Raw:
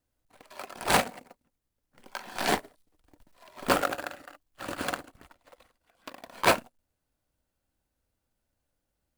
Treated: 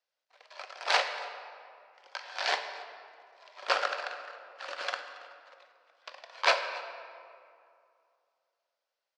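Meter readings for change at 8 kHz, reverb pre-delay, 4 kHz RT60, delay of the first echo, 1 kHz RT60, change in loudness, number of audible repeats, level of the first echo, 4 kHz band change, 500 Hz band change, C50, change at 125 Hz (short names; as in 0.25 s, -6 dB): -9.0 dB, 13 ms, 1.3 s, 0.277 s, 2.3 s, -3.0 dB, 1, -21.0 dB, +1.5 dB, -4.5 dB, 8.0 dB, under -40 dB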